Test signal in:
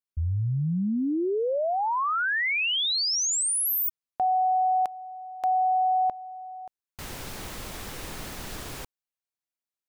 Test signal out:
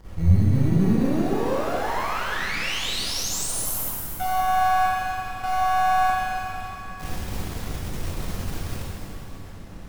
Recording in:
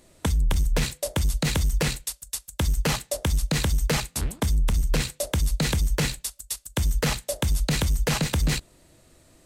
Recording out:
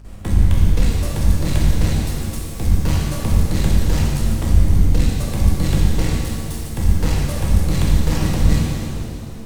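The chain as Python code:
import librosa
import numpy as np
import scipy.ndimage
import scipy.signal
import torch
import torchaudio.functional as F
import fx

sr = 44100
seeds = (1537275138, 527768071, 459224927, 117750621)

p1 = fx.law_mismatch(x, sr, coded='mu')
p2 = fx.low_shelf(p1, sr, hz=200.0, db=12.0)
p3 = fx.hum_notches(p2, sr, base_hz=60, count=4)
p4 = fx.sample_hold(p3, sr, seeds[0], rate_hz=2100.0, jitter_pct=0)
p5 = p3 + (p4 * librosa.db_to_amplitude(-10.0))
p6 = fx.dmg_noise_colour(p5, sr, seeds[1], colour='brown', level_db=-33.0)
p7 = np.maximum(p6, 0.0)
p8 = fx.add_hum(p7, sr, base_hz=50, snr_db=23)
p9 = fx.rev_shimmer(p8, sr, seeds[2], rt60_s=2.2, semitones=7, shimmer_db=-8, drr_db=-4.5)
y = p9 * librosa.db_to_amplitude(-5.0)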